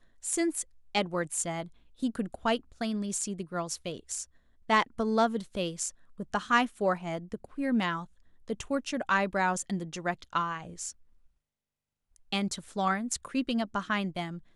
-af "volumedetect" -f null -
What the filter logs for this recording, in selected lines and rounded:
mean_volume: -32.2 dB
max_volume: -11.2 dB